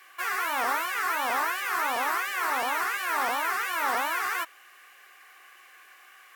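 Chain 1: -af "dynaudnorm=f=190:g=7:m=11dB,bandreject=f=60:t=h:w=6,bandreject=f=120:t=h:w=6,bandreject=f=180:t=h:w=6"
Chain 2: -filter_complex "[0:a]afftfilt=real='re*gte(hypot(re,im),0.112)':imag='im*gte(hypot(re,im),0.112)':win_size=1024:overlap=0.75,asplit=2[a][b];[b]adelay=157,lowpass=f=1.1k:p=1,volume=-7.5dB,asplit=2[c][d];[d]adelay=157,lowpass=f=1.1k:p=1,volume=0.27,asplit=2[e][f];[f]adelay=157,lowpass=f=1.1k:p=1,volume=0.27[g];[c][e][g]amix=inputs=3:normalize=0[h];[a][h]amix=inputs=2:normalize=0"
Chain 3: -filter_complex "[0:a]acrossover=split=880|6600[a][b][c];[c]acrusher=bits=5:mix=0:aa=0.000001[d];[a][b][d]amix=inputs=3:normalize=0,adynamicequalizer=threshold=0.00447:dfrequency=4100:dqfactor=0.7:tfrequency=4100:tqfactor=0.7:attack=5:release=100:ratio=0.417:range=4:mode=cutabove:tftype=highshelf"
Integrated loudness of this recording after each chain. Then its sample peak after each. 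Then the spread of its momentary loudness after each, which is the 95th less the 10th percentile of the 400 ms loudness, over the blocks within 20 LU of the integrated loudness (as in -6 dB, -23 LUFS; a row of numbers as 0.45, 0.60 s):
-17.0, -29.5, -28.0 LUFS; -4.5, -17.5, -15.5 dBFS; 6, 4, 2 LU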